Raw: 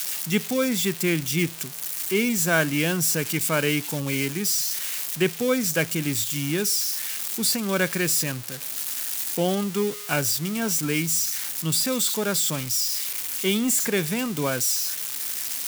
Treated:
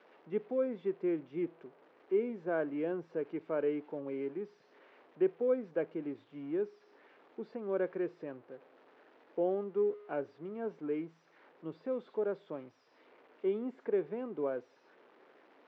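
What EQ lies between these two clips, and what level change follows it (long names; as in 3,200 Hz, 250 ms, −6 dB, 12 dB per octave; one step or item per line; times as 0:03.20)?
four-pole ladder band-pass 490 Hz, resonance 40%
high-frequency loss of the air 240 metres
+3.0 dB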